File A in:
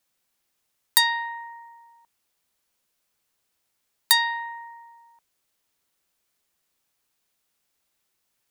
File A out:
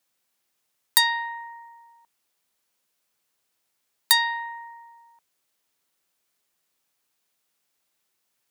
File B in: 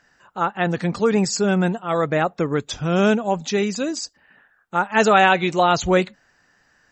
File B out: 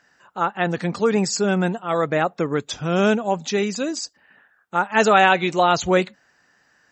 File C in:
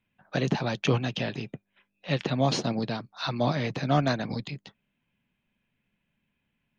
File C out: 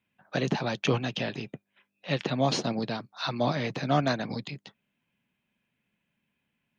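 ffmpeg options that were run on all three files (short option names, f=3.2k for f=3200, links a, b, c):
-af "highpass=f=140:p=1"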